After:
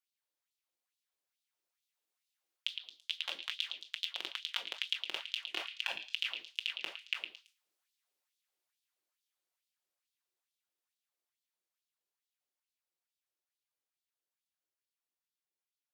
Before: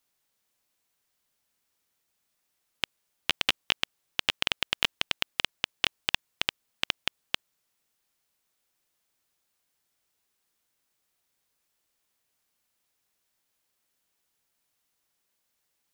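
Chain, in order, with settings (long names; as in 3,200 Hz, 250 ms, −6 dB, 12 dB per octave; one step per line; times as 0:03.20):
source passing by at 0:05.17, 21 m/s, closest 12 metres
rectangular room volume 540 cubic metres, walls furnished, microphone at 0.94 metres
reversed playback
downward compressor 6 to 1, threshold −40 dBFS, peak gain reduction 17.5 dB
reversed playback
auto-filter high-pass sine 2.3 Hz 330–3,800 Hz
echo through a band-pass that steps 111 ms, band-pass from 3,200 Hz, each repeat 0.7 octaves, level −6 dB
level +3 dB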